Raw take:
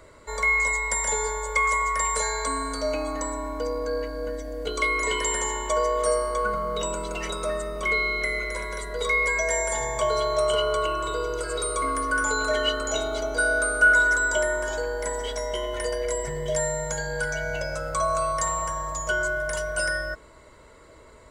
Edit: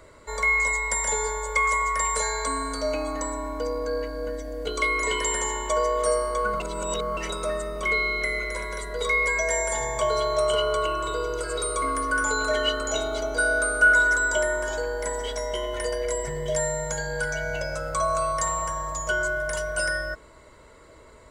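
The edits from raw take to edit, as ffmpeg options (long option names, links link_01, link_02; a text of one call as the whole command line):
ffmpeg -i in.wav -filter_complex "[0:a]asplit=3[link_01][link_02][link_03];[link_01]atrim=end=6.602[link_04];[link_02]atrim=start=6.598:end=7.172,asetpts=PTS-STARTPTS,areverse[link_05];[link_03]atrim=start=7.168[link_06];[link_04][link_05]acrossfade=duration=0.004:curve1=hsin:curve2=hsin[link_07];[link_07][link_06]acrossfade=duration=0.004:curve1=hsin:curve2=hsin" out.wav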